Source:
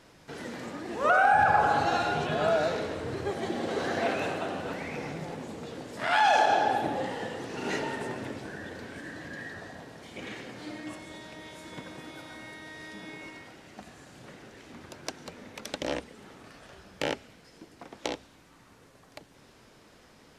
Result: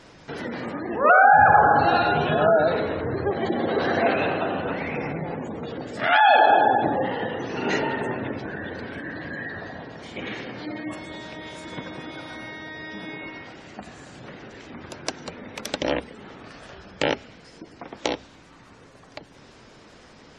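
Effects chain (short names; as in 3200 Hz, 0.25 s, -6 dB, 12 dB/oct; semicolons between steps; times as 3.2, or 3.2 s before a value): spectral gate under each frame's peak -25 dB strong; 5.83–6.43 notch 990 Hz, Q 5.2; gain +7.5 dB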